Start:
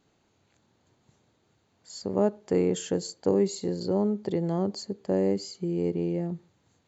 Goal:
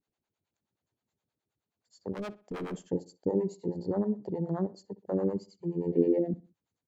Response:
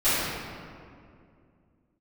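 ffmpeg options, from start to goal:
-filter_complex "[0:a]acontrast=78,afwtdn=0.0562,asplit=3[s0][s1][s2];[s0]afade=t=out:st=2.13:d=0.02[s3];[s1]asoftclip=type=hard:threshold=0.0631,afade=t=in:st=2.13:d=0.02,afade=t=out:st=2.77:d=0.02[s4];[s2]afade=t=in:st=2.77:d=0.02[s5];[s3][s4][s5]amix=inputs=3:normalize=0,acrossover=split=500[s6][s7];[s6]aeval=exprs='val(0)*(1-1/2+1/2*cos(2*PI*9.5*n/s))':c=same[s8];[s7]aeval=exprs='val(0)*(1-1/2-1/2*cos(2*PI*9.5*n/s))':c=same[s9];[s8][s9]amix=inputs=2:normalize=0,asettb=1/sr,asplit=3[s10][s11][s12];[s10]atrim=end=5.924[s13];[s11]atrim=start=5.92:end=6.34,asetpts=PTS-STARTPTS,afade=t=in:d=0.004:c=qsin,afade=t=out:st=0.416:d=0.004:c=qsin,equalizer=f=125:t=o:w=1:g=-9,equalizer=f=250:t=o:w=1:g=10,equalizer=f=500:t=o:w=1:g=12,equalizer=f=1000:t=o:w=1:g=-11,equalizer=f=2000:t=o:w=1:g=12,equalizer=f=4000:t=o:w=1:g=5[s14];[s12]atrim=start=6.336[s15];[s13][s14]acrossfade=d=0.004:c1=hsin:c2=qsin[s16];[s16][s15]acrossfade=d=0.004:c1=qsin:c2=hsin,asplit=2[s17][s18];[s18]adelay=63,lowpass=f=4000:p=1,volume=0.112,asplit=2[s19][s20];[s20]adelay=63,lowpass=f=4000:p=1,volume=0.35,asplit=2[s21][s22];[s22]adelay=63,lowpass=f=4000:p=1,volume=0.35[s23];[s17][s19][s21][s23]amix=inputs=4:normalize=0,volume=0.501"

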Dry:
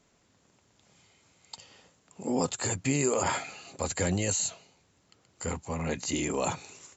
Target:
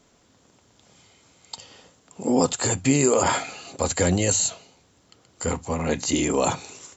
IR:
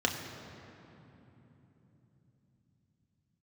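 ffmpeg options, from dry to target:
-filter_complex "[0:a]asplit=2[s0][s1];[1:a]atrim=start_sample=2205,atrim=end_sample=3528[s2];[s1][s2]afir=irnorm=-1:irlink=0,volume=0.0891[s3];[s0][s3]amix=inputs=2:normalize=0,volume=2.11"

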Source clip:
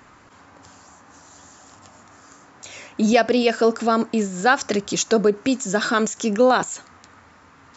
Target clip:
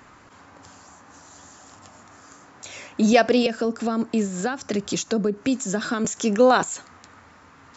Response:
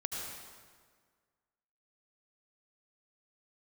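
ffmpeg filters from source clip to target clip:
-filter_complex "[0:a]asettb=1/sr,asplit=3[s0][s1][s2];[s0]atrim=end=3.464[s3];[s1]atrim=start=3.46:end=6.05,asetpts=PTS-STARTPTS,afade=t=in:d=0.004:c=qsin,afade=t=out:st=2.586:d=0.004:c=qsin,acrossover=split=290[s4][s5];[s5]acompressor=threshold=0.0562:ratio=10[s6];[s4][s6]amix=inputs=2:normalize=0[s7];[s2]atrim=start=6.046[s8];[s3][s7]acrossfade=d=0.004:c1=hsin:c2=qsin[s9];[s9][s8]acrossfade=d=0.004:c1=qsin:c2=hsin"

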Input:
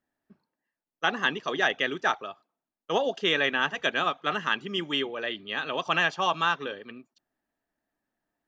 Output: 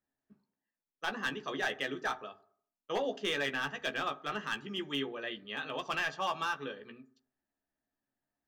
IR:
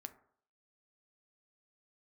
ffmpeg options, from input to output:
-filter_complex "[0:a]asoftclip=type=hard:threshold=0.126,asplit=2[s0][s1];[1:a]atrim=start_sample=2205,lowshelf=f=270:g=11.5,adelay=14[s2];[s1][s2]afir=irnorm=-1:irlink=0,volume=0.75[s3];[s0][s3]amix=inputs=2:normalize=0,volume=0.376"

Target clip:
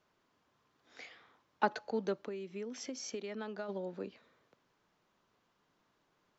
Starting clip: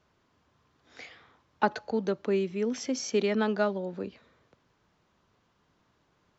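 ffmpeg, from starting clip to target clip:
-filter_complex "[0:a]equalizer=f=67:w=0.63:g=-12,asplit=3[s0][s1][s2];[s0]afade=t=out:st=2.23:d=0.02[s3];[s1]acompressor=threshold=0.02:ratio=10,afade=t=in:st=2.23:d=0.02,afade=t=out:st=3.68:d=0.02[s4];[s2]afade=t=in:st=3.68:d=0.02[s5];[s3][s4][s5]amix=inputs=3:normalize=0,volume=0.596"

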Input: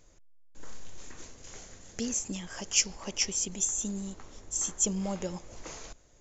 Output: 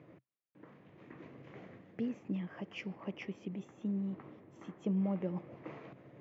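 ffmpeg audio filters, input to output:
-af "areverse,acompressor=mode=upward:threshold=0.02:ratio=2.5,areverse,highpass=f=120:w=0.5412,highpass=f=120:w=1.3066,equalizer=f=130:t=q:w=4:g=8,equalizer=f=190:t=q:w=4:g=4,equalizer=f=310:t=q:w=4:g=6,equalizer=f=870:t=q:w=4:g=-4,equalizer=f=1500:t=q:w=4:g=-7,lowpass=f=2200:w=0.5412,lowpass=f=2200:w=1.3066,volume=0.631"

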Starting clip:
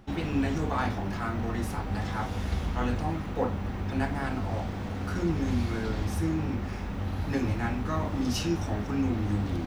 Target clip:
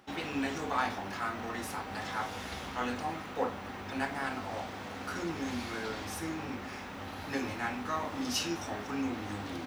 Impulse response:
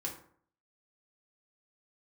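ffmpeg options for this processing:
-filter_complex "[0:a]highpass=f=780:p=1,asplit=2[s0][s1];[1:a]atrim=start_sample=2205,asetrate=35280,aresample=44100[s2];[s1][s2]afir=irnorm=-1:irlink=0,volume=0.224[s3];[s0][s3]amix=inputs=2:normalize=0"

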